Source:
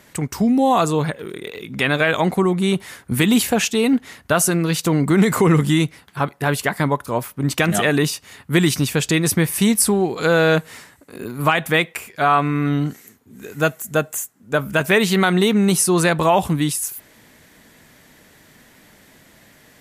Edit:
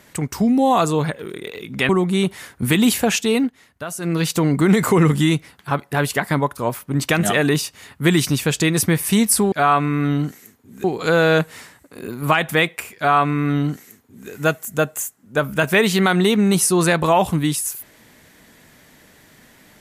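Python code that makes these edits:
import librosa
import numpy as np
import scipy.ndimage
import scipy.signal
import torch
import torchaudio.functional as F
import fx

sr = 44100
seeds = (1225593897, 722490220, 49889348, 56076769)

y = fx.edit(x, sr, fx.cut(start_s=1.89, length_s=0.49),
    fx.fade_down_up(start_s=3.82, length_s=0.85, db=-12.5, fade_s=0.18, curve='qsin'),
    fx.duplicate(start_s=12.14, length_s=1.32, to_s=10.01), tone=tone)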